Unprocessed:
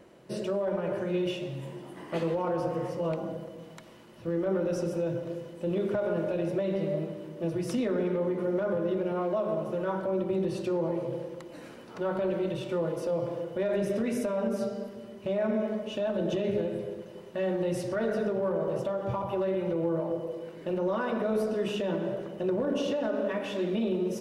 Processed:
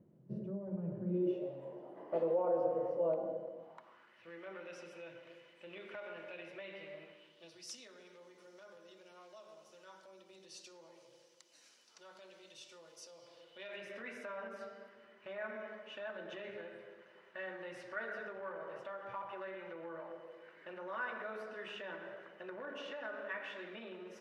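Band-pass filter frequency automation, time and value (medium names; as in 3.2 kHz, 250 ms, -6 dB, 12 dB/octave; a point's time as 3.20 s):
band-pass filter, Q 2.3
0.99 s 150 Hz
1.50 s 580 Hz
3.54 s 580 Hz
4.27 s 2.3 kHz
7.10 s 2.3 kHz
7.72 s 5.8 kHz
13.17 s 5.8 kHz
14.07 s 1.7 kHz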